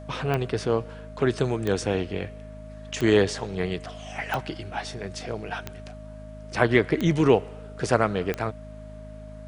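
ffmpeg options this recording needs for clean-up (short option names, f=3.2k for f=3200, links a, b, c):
-af "adeclick=t=4,bandreject=f=52.6:t=h:w=4,bandreject=f=105.2:t=h:w=4,bandreject=f=157.8:t=h:w=4,bandreject=f=210.4:t=h:w=4,bandreject=f=263:t=h:w=4,bandreject=f=620:w=30"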